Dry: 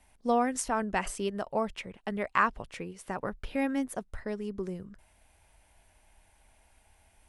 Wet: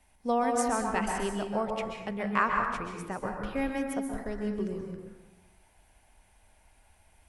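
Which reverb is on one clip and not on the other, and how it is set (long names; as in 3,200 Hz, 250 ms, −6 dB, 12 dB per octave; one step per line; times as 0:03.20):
dense smooth reverb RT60 1.1 s, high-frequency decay 0.5×, pre-delay 115 ms, DRR 1.5 dB
level −1.5 dB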